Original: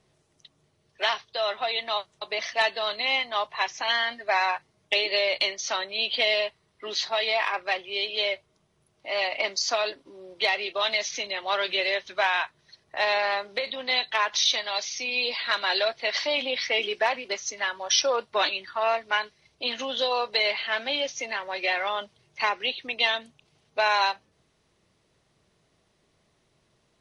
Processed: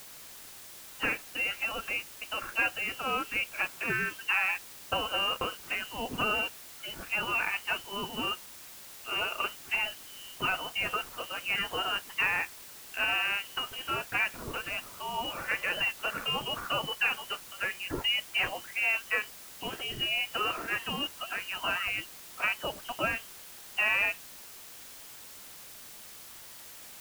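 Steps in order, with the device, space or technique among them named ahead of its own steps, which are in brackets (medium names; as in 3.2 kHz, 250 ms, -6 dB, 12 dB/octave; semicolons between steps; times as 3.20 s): scrambled radio voice (band-pass 320–3100 Hz; frequency inversion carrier 3.4 kHz; white noise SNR 14 dB); trim -4 dB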